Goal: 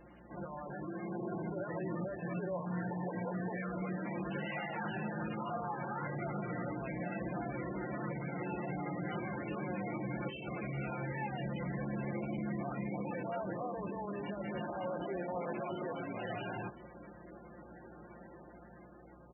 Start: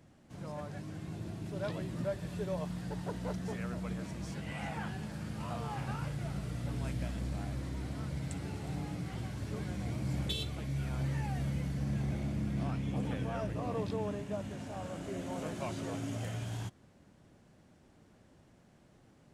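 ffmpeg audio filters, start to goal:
-filter_complex "[0:a]highpass=280,lowpass=3900,acompressor=threshold=0.00708:ratio=12,alimiter=level_in=11.2:limit=0.0631:level=0:latency=1:release=24,volume=0.0891,dynaudnorm=f=440:g=5:m=1.78,aeval=exprs='val(0)+0.000398*(sin(2*PI*60*n/s)+sin(2*PI*2*60*n/s)/2+sin(2*PI*3*60*n/s)/3+sin(2*PI*4*60*n/s)/4+sin(2*PI*5*60*n/s)/5)':c=same,asettb=1/sr,asplit=3[s0][s1][s2];[s0]atrim=end=0.874[s3];[s1]atrim=start=0.87:end=1.3,asetpts=PTS-STARTPTS,afade=t=in:d=0.004:c=qsin,afade=t=out:st=0.426:d=0.004:c=qsin,afreqshift=25[s4];[s2]atrim=start=1.296[s5];[s3][s4]acrossfade=d=0.004:c1=hsin:c2=qsin[s6];[s6][s5]acrossfade=d=0.004:c1=qsin:c2=hsin,aecho=1:1:5.7:0.65,asplit=2[s7][s8];[s8]asplit=4[s9][s10][s11][s12];[s9]adelay=81,afreqshift=120,volume=0.0944[s13];[s10]adelay=162,afreqshift=240,volume=0.0507[s14];[s11]adelay=243,afreqshift=360,volume=0.0275[s15];[s12]adelay=324,afreqshift=480,volume=0.0148[s16];[s13][s14][s15][s16]amix=inputs=4:normalize=0[s17];[s7][s17]amix=inputs=2:normalize=0,volume=2.37" -ar 22050 -c:a libmp3lame -b:a 8k

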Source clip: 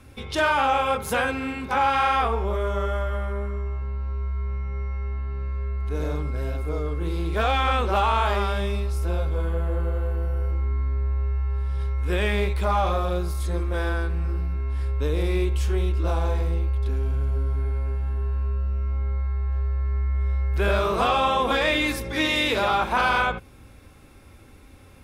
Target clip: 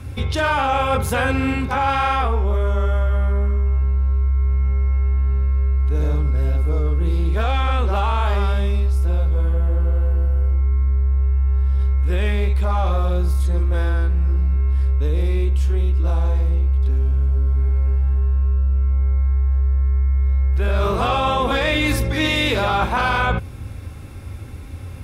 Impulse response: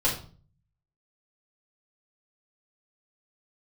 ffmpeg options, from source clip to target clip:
-af "equalizer=f=91:t=o:w=1.5:g=12.5,areverse,acompressor=threshold=0.0708:ratio=10,areverse,volume=2.51"

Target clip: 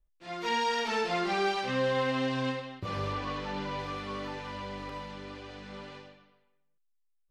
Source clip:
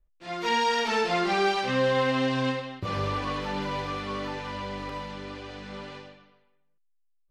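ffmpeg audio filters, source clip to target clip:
-filter_complex "[0:a]asettb=1/sr,asplit=3[s0][s1][s2];[s0]atrim=end=3.134[s3];[s1]atrim=start=3.13:end=3.8,asetpts=PTS-STARTPTS,afade=t=in:d=0.004:c=qsin,afade=t=out:st=0.666:d=0.004:c=qsin,lowpass=7700[s4];[s2]atrim=start=3.796[s5];[s3][s4]acrossfade=d=0.004:c1=hsin:c2=qsin[s6];[s6][s5]acrossfade=d=0.004:c1=qsin:c2=hsin,volume=0.596"

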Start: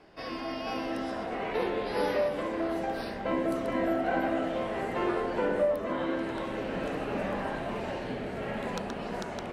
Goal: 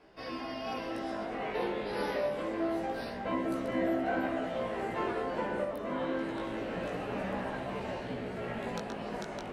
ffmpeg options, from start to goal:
-af "flanger=delay=15.5:depth=3.9:speed=0.26"

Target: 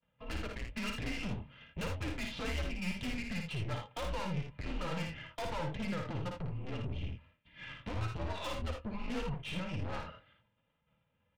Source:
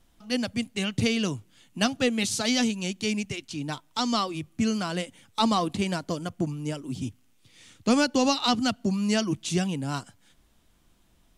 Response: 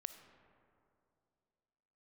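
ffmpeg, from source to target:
-af "agate=range=0.0224:threshold=0.00398:ratio=3:detection=peak,lowshelf=f=210:g=7.5,aecho=1:1:2.7:0.9,highpass=f=200:t=q:w=0.5412,highpass=f=200:t=q:w=1.307,lowpass=f=3200:t=q:w=0.5176,lowpass=f=3200:t=q:w=0.7071,lowpass=f=3200:t=q:w=1.932,afreqshift=-180,acompressor=threshold=0.0141:ratio=6,aeval=exprs='(tanh(200*val(0)+0.3)-tanh(0.3))/200':c=same,flanger=delay=4.3:depth=5.6:regen=-43:speed=1.2:shape=sinusoidal,aecho=1:1:55|80:0.596|0.376,volume=4.47"

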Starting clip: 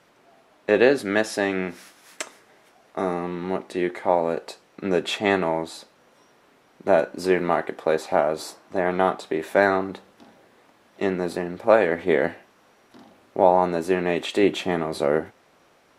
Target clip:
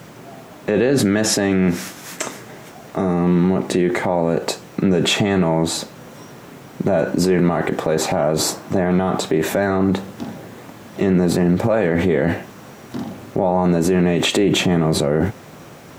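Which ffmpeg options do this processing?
-af "equalizer=f=130:t=o:w=2:g=15,aexciter=amount=1.9:drive=1.4:freq=6200,acrusher=bits=10:mix=0:aa=0.000001,alimiter=level_in=11.9:limit=0.891:release=50:level=0:latency=1,volume=0.447"

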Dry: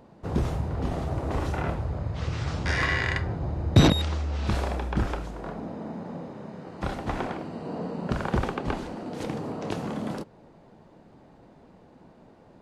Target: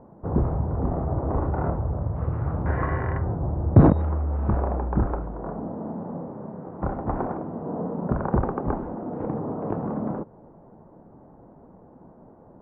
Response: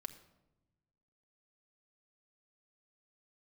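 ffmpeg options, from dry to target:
-af "lowpass=f=1200:w=0.5412,lowpass=f=1200:w=1.3066,volume=1.5"

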